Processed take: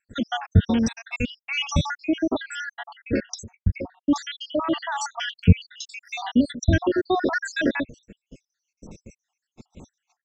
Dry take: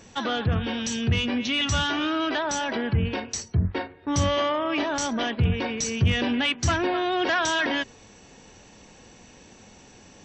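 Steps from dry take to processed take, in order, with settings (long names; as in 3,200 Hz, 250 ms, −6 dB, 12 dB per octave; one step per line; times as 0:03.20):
time-frequency cells dropped at random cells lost 76%
noise gate −54 dBFS, range −25 dB
low-shelf EQ 430 Hz +11.5 dB
level +2 dB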